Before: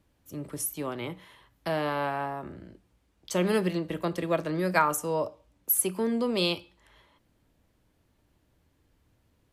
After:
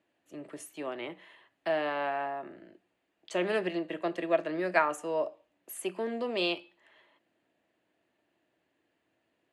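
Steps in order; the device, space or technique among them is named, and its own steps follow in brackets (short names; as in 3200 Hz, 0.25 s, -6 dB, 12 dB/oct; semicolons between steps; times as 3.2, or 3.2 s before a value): full-range speaker at full volume (Doppler distortion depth 0.11 ms; speaker cabinet 260–8800 Hz, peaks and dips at 340 Hz +6 dB, 670 Hz +9 dB, 1800 Hz +8 dB, 2700 Hz +7 dB, 5600 Hz -9 dB, 8100 Hz -4 dB); gain -6 dB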